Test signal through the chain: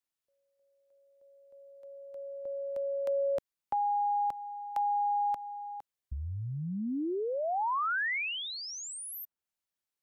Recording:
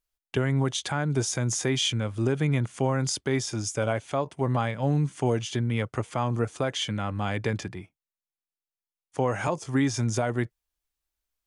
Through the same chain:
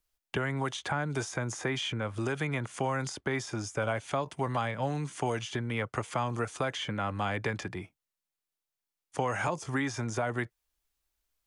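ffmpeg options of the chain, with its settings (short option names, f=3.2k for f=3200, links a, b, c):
-filter_complex "[0:a]acrossover=split=330|750|2100[a][b][c][d];[a]acompressor=threshold=-40dB:ratio=4[e];[b]acompressor=threshold=-42dB:ratio=4[f];[c]acompressor=threshold=-35dB:ratio=4[g];[d]acompressor=threshold=-47dB:ratio=4[h];[e][f][g][h]amix=inputs=4:normalize=0,volume=3.5dB"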